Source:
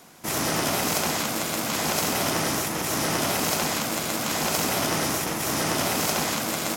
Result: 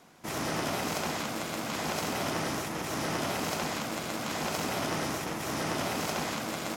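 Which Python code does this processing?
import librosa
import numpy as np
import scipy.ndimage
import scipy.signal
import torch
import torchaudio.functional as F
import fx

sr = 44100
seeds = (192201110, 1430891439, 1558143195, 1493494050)

y = fx.lowpass(x, sr, hz=3900.0, slope=6)
y = y * librosa.db_to_amplitude(-5.5)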